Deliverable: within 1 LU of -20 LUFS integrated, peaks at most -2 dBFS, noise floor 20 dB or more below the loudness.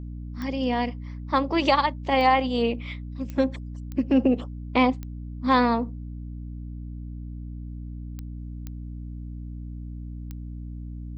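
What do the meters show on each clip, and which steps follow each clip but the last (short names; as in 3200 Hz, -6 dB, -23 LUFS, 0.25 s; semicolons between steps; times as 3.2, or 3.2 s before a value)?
clicks 8; hum 60 Hz; harmonics up to 300 Hz; hum level -33 dBFS; loudness -24.5 LUFS; peak -8.0 dBFS; loudness target -20.0 LUFS
-> de-click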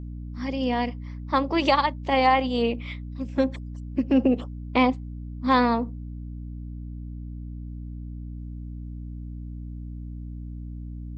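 clicks 0; hum 60 Hz; harmonics up to 300 Hz; hum level -33 dBFS
-> de-hum 60 Hz, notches 5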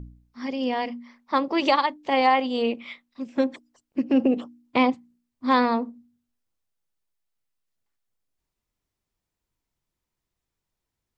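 hum none; loudness -24.5 LUFS; peak -8.0 dBFS; loudness target -20.0 LUFS
-> gain +4.5 dB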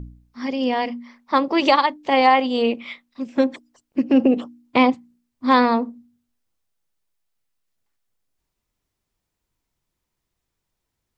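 loudness -20.0 LUFS; peak -3.5 dBFS; noise floor -80 dBFS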